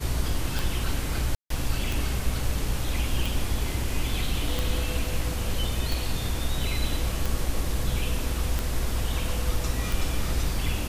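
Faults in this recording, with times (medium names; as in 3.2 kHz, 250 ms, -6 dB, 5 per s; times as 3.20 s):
tick 45 rpm
1.35–1.50 s: dropout 153 ms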